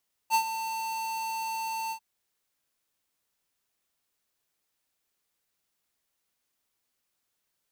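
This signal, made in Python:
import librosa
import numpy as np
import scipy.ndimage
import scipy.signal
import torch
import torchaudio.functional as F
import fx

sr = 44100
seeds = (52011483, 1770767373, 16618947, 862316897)

y = fx.adsr_tone(sr, wave='square', hz=896.0, attack_ms=47.0, decay_ms=80.0, sustain_db=-11.5, held_s=1.61, release_ms=82.0, level_db=-21.5)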